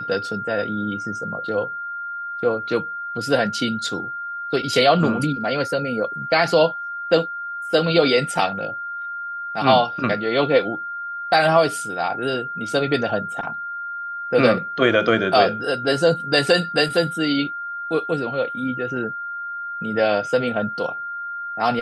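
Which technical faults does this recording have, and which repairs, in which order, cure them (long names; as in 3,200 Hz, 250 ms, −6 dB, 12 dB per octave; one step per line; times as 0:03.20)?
whistle 1,400 Hz −27 dBFS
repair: notch filter 1,400 Hz, Q 30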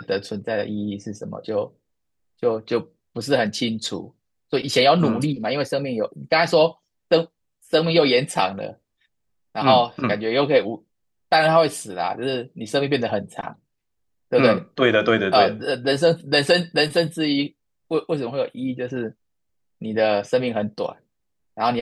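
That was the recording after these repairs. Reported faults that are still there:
none of them is left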